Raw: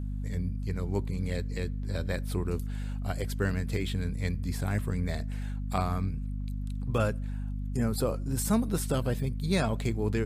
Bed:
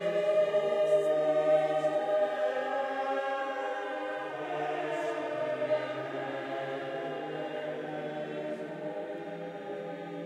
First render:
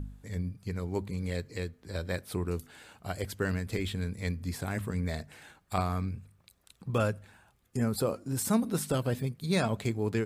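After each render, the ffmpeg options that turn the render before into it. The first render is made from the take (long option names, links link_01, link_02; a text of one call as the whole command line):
ffmpeg -i in.wav -af "bandreject=frequency=50:width_type=h:width=4,bandreject=frequency=100:width_type=h:width=4,bandreject=frequency=150:width_type=h:width=4,bandreject=frequency=200:width_type=h:width=4,bandreject=frequency=250:width_type=h:width=4" out.wav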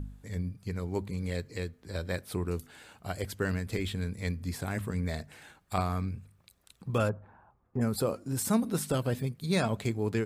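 ffmpeg -i in.wav -filter_complex "[0:a]asplit=3[link_01][link_02][link_03];[link_01]afade=type=out:start_time=7.08:duration=0.02[link_04];[link_02]lowpass=frequency=1000:width_type=q:width=2.1,afade=type=in:start_time=7.08:duration=0.02,afade=type=out:start_time=7.8:duration=0.02[link_05];[link_03]afade=type=in:start_time=7.8:duration=0.02[link_06];[link_04][link_05][link_06]amix=inputs=3:normalize=0" out.wav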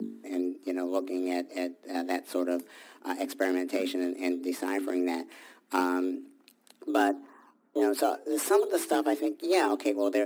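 ffmpeg -i in.wav -filter_complex "[0:a]asplit=2[link_01][link_02];[link_02]acrusher=samples=9:mix=1:aa=0.000001:lfo=1:lforange=9:lforate=3.5,volume=-7.5dB[link_03];[link_01][link_03]amix=inputs=2:normalize=0,afreqshift=180" out.wav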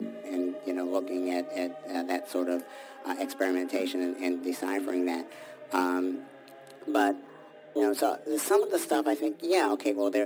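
ffmpeg -i in.wav -i bed.wav -filter_complex "[1:a]volume=-14.5dB[link_01];[0:a][link_01]amix=inputs=2:normalize=0" out.wav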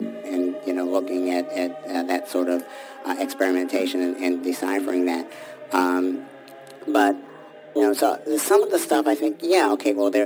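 ffmpeg -i in.wav -af "volume=7dB" out.wav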